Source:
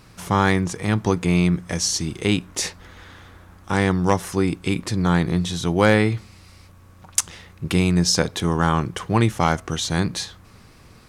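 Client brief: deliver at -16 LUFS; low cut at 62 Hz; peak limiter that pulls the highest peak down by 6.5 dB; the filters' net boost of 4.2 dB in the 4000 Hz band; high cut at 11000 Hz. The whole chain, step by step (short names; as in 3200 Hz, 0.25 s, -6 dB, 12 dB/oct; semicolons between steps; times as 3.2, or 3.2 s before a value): HPF 62 Hz; LPF 11000 Hz; bell 4000 Hz +5.5 dB; gain +6.5 dB; limiter -2 dBFS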